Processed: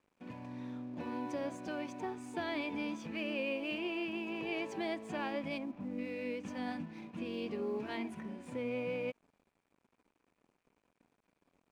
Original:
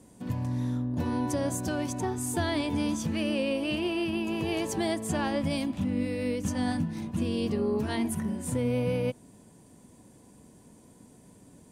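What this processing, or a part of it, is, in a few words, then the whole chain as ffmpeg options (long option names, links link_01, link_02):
pocket radio on a weak battery: -filter_complex "[0:a]asplit=3[link_01][link_02][link_03];[link_01]afade=type=out:start_time=5.57:duration=0.02[link_04];[link_02]lowpass=1200,afade=type=in:start_time=5.57:duration=0.02,afade=type=out:start_time=5.97:duration=0.02[link_05];[link_03]afade=type=in:start_time=5.97:duration=0.02[link_06];[link_04][link_05][link_06]amix=inputs=3:normalize=0,highpass=260,lowpass=3500,aeval=exprs='sgn(val(0))*max(abs(val(0))-0.0015,0)':channel_layout=same,equalizer=frequency=2400:width_type=o:width=0.24:gain=9,volume=-7dB"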